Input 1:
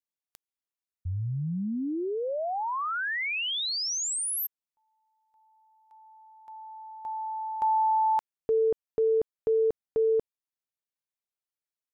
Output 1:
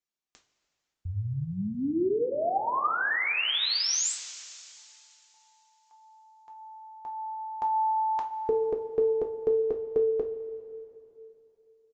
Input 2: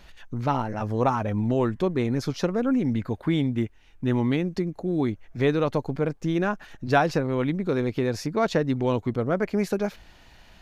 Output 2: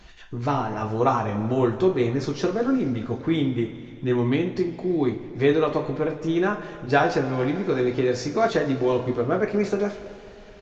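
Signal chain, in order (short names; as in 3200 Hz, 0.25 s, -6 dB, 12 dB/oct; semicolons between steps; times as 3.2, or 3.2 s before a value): dynamic EQ 180 Hz, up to -5 dB, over -39 dBFS, Q 1.5; downsampling 16000 Hz; two-slope reverb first 0.25 s, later 3 s, from -18 dB, DRR 0.5 dB; Opus 48 kbps 48000 Hz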